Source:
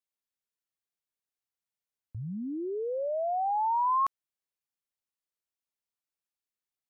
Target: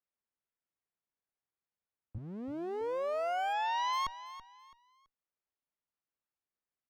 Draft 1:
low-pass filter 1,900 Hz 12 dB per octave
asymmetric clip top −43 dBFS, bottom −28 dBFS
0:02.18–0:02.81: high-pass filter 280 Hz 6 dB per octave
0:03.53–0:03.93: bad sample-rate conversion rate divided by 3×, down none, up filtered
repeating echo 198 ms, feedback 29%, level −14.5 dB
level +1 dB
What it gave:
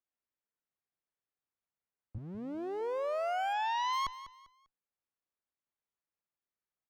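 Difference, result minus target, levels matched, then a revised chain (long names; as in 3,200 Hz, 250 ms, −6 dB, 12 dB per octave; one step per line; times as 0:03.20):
echo 133 ms early
low-pass filter 1,900 Hz 12 dB per octave
asymmetric clip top −43 dBFS, bottom −28 dBFS
0:02.18–0:02.81: high-pass filter 280 Hz 6 dB per octave
0:03.53–0:03.93: bad sample-rate conversion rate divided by 3×, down none, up filtered
repeating echo 331 ms, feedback 29%, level −14.5 dB
level +1 dB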